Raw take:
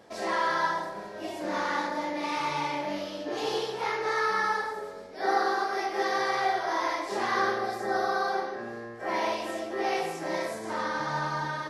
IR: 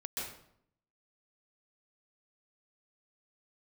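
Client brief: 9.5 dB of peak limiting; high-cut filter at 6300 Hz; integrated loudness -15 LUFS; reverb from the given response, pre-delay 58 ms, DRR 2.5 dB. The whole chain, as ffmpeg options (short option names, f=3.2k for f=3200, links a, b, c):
-filter_complex "[0:a]lowpass=6.3k,alimiter=limit=-23.5dB:level=0:latency=1,asplit=2[a][b];[1:a]atrim=start_sample=2205,adelay=58[c];[b][c]afir=irnorm=-1:irlink=0,volume=-4dB[d];[a][d]amix=inputs=2:normalize=0,volume=16dB"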